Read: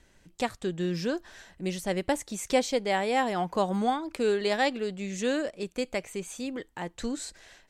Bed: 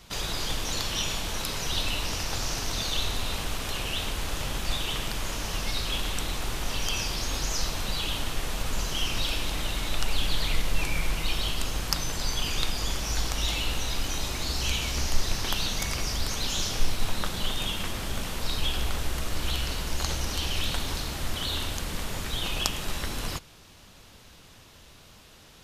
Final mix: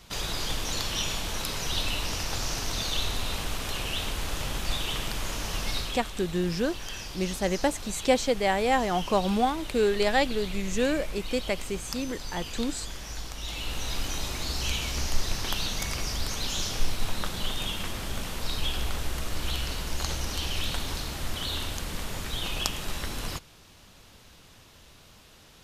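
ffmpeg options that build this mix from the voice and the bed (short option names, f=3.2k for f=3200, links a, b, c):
-filter_complex "[0:a]adelay=5550,volume=2dB[a];[1:a]volume=7dB,afade=t=out:st=5.77:d=0.24:silence=0.375837,afade=t=in:st=13.41:d=0.53:silence=0.421697[b];[a][b]amix=inputs=2:normalize=0"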